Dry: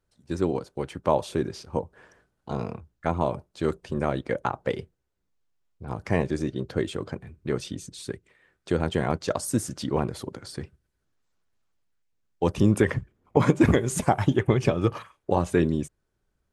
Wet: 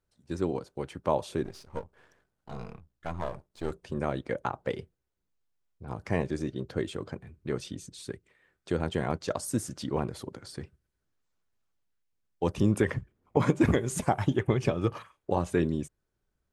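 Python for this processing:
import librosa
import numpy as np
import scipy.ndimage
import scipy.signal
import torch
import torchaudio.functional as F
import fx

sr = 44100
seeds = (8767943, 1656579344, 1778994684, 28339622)

y = fx.halfwave_gain(x, sr, db=-12.0, at=(1.43, 3.71))
y = y * librosa.db_to_amplitude(-4.5)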